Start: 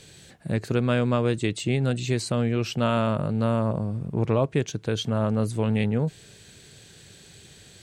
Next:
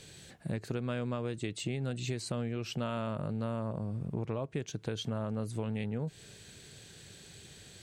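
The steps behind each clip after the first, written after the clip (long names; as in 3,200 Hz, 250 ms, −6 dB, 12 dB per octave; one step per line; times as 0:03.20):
downward compressor, threshold −29 dBFS, peak gain reduction 11 dB
level −3 dB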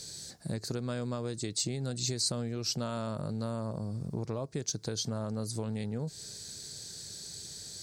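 high shelf with overshoot 3,700 Hz +9 dB, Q 3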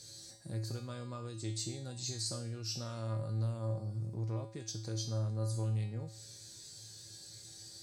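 tuned comb filter 110 Hz, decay 0.54 s, harmonics odd, mix 90%
level +7 dB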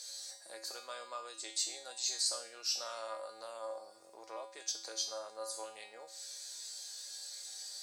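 high-pass filter 600 Hz 24 dB per octave
level +5.5 dB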